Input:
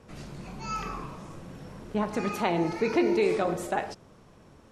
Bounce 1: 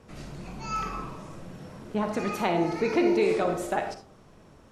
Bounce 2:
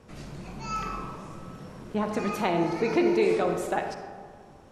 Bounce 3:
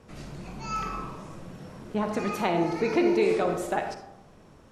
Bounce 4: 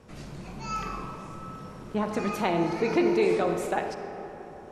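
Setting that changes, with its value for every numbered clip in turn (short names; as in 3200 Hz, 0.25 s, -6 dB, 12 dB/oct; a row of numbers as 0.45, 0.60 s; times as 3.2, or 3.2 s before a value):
digital reverb, RT60: 0.41, 2, 0.89, 4.4 s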